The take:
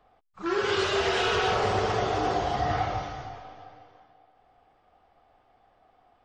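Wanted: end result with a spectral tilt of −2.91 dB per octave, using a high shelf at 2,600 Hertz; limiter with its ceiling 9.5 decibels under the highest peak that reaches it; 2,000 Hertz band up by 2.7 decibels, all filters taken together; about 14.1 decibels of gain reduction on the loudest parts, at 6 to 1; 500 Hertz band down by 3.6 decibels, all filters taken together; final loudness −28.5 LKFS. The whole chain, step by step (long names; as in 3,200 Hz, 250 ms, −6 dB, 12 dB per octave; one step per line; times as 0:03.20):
parametric band 500 Hz −5 dB
parametric band 2,000 Hz +7 dB
high-shelf EQ 2,600 Hz −7 dB
downward compressor 6 to 1, threshold −39 dBFS
level +18 dB
brickwall limiter −20 dBFS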